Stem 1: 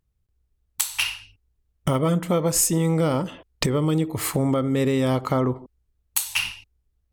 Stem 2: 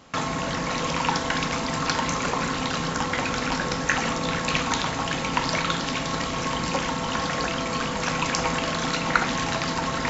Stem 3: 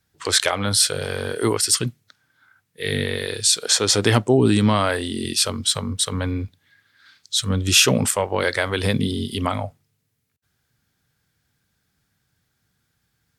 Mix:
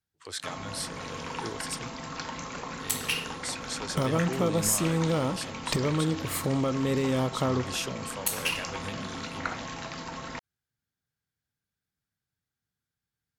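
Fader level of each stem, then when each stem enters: -5.5, -12.0, -18.5 dB; 2.10, 0.30, 0.00 s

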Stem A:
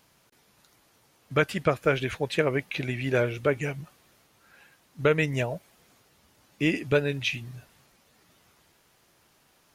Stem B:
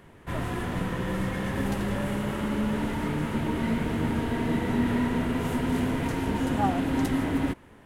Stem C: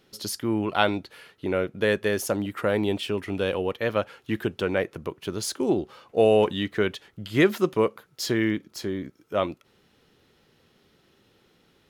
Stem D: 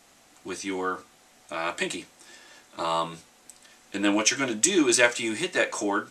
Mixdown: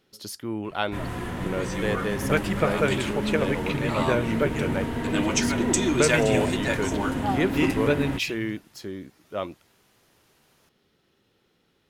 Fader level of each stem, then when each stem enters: -0.5, -1.0, -5.5, -3.5 dB; 0.95, 0.65, 0.00, 1.10 s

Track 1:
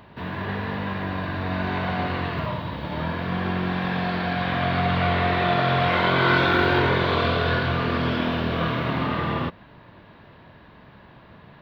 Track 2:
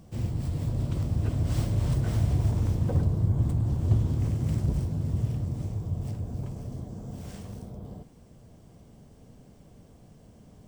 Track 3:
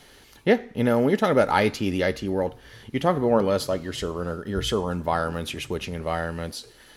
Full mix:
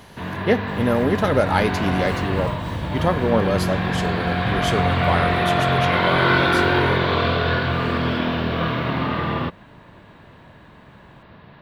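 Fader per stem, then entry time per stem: +2.0, -5.5, +0.5 dB; 0.00, 0.55, 0.00 s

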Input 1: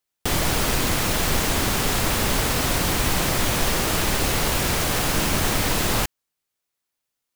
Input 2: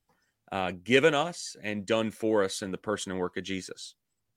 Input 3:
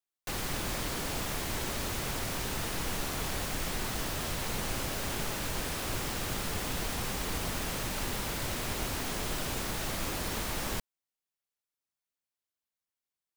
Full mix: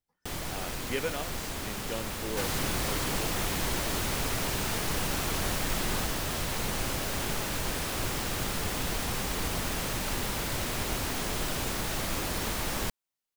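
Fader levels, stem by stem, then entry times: -14.0, -11.0, +2.5 dB; 0.00, 0.00, 2.10 s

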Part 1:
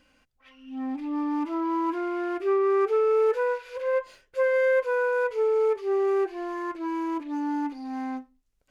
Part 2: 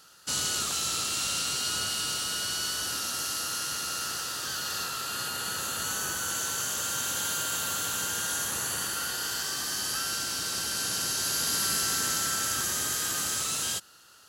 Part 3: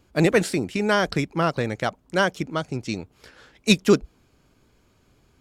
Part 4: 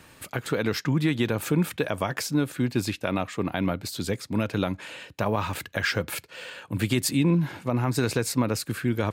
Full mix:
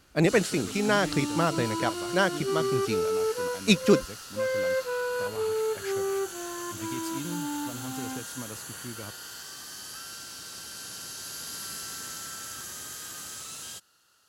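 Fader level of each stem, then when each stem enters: -5.5, -10.0, -3.5, -16.0 dB; 0.00, 0.00, 0.00, 0.00 s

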